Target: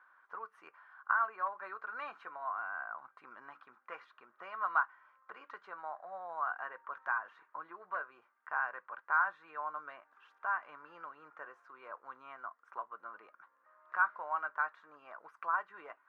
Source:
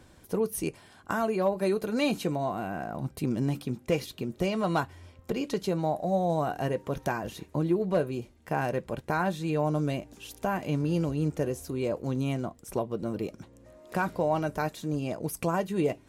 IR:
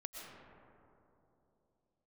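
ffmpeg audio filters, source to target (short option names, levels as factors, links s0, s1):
-af "asuperpass=centerf=1300:order=4:qfactor=2.5,volume=1.78"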